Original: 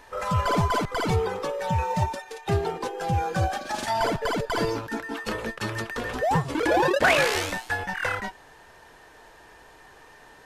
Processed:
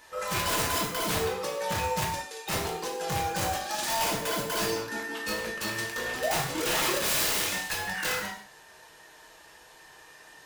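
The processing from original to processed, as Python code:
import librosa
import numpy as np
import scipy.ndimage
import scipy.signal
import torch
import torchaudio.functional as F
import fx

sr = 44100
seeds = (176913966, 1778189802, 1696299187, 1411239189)

y = fx.highpass(x, sr, hz=70.0, slope=6)
y = fx.high_shelf(y, sr, hz=2400.0, db=11.0)
y = (np.mod(10.0 ** (16.5 / 20.0) * y + 1.0, 2.0) - 1.0) / 10.0 ** (16.5 / 20.0)
y = fx.rev_gated(y, sr, seeds[0], gate_ms=200, shape='falling', drr_db=-2.0)
y = y * librosa.db_to_amplitude(-9.0)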